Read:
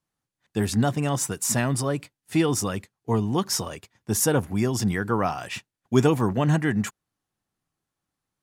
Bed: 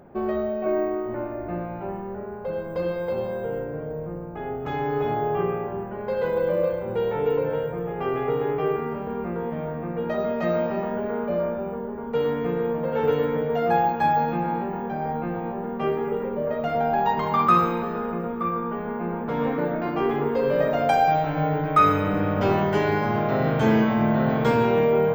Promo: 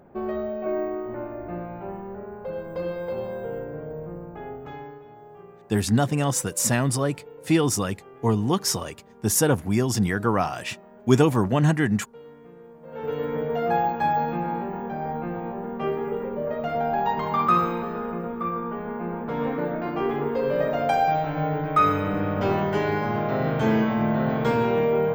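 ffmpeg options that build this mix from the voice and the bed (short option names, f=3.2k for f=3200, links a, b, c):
-filter_complex "[0:a]adelay=5150,volume=1.5dB[a];[1:a]volume=16.5dB,afade=t=out:st=4.29:d=0.72:silence=0.11885,afade=t=in:st=12.81:d=0.61:silence=0.105925[b];[a][b]amix=inputs=2:normalize=0"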